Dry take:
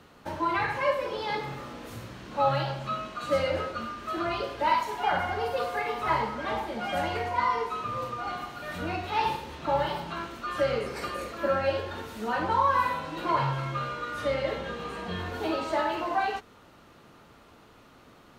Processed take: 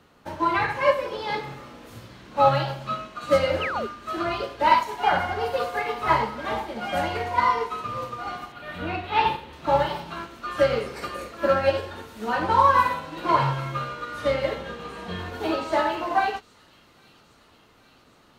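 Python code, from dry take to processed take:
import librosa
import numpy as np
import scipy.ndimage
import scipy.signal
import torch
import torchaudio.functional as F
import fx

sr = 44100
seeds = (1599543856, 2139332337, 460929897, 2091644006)

y = fx.echo_wet_highpass(x, sr, ms=813, feedback_pct=69, hz=3800.0, wet_db=-11)
y = fx.spec_paint(y, sr, seeds[0], shape='fall', start_s=3.61, length_s=0.26, low_hz=360.0, high_hz=3200.0, level_db=-32.0)
y = fx.high_shelf_res(y, sr, hz=4400.0, db=-7.5, q=1.5, at=(8.52, 9.53))
y = fx.upward_expand(y, sr, threshold_db=-41.0, expansion=1.5)
y = y * librosa.db_to_amplitude(7.5)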